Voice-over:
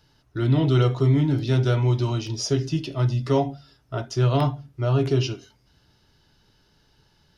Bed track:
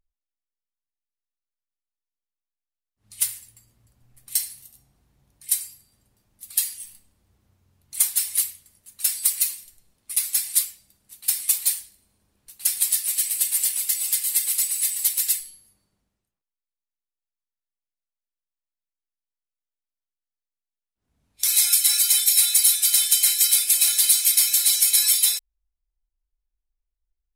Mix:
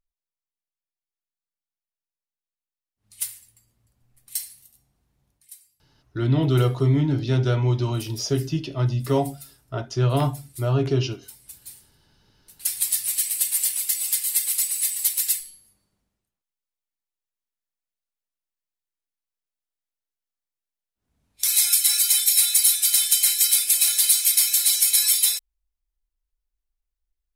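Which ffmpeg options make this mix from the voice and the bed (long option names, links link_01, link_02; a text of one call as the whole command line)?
ffmpeg -i stem1.wav -i stem2.wav -filter_complex "[0:a]adelay=5800,volume=-0.5dB[link_01];[1:a]volume=16.5dB,afade=type=out:start_time=5.29:duration=0.22:silence=0.141254,afade=type=in:start_time=11.64:duration=1.45:silence=0.0794328[link_02];[link_01][link_02]amix=inputs=2:normalize=0" out.wav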